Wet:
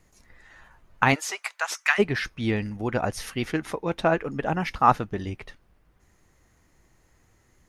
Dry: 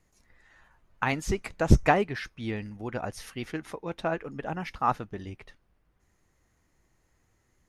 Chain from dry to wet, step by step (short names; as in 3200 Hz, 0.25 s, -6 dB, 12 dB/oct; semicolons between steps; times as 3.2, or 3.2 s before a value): 1.14–1.98 HPF 550 Hz -> 1500 Hz 24 dB/oct; gain +7.5 dB